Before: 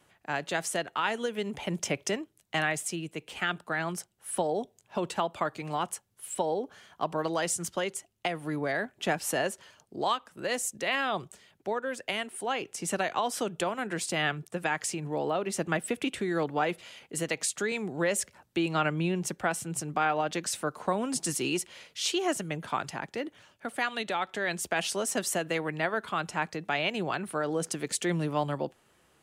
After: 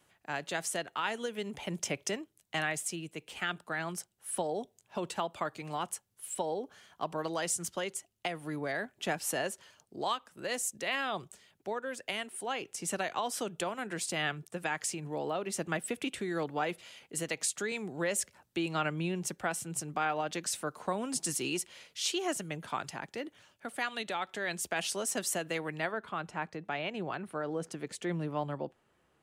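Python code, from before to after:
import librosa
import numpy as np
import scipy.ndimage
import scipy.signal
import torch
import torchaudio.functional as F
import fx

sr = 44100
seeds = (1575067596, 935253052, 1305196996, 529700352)

y = fx.high_shelf(x, sr, hz=3500.0, db=fx.steps((0.0, 4.0), (25.91, -10.0)))
y = y * librosa.db_to_amplitude(-5.0)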